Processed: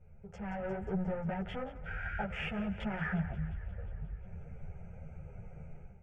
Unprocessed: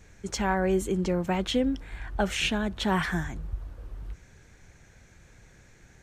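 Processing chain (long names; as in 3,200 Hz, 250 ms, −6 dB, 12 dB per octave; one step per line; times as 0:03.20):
adaptive Wiener filter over 25 samples
soft clipping −29 dBFS, distortion −8 dB
treble cut that deepens with the level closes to 2,100 Hz, closed at −32.5 dBFS
downward compressor 3 to 1, threshold −44 dBFS, peak gain reduction 10 dB
thirty-one-band graphic EQ 160 Hz +12 dB, 1,250 Hz +8 dB, 6,300 Hz −5 dB
healed spectral selection 0:01.89–0:02.17, 1,300–8,900 Hz after
mains-hum notches 60/120/180 Hz
on a send: feedback echo with a high-pass in the loop 178 ms, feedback 69%, high-pass 480 Hz, level −15 dB
on the sum: automatic gain control gain up to 12.5 dB
high-shelf EQ 11,000 Hz −5 dB
phaser with its sweep stopped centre 1,100 Hz, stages 6
string-ensemble chorus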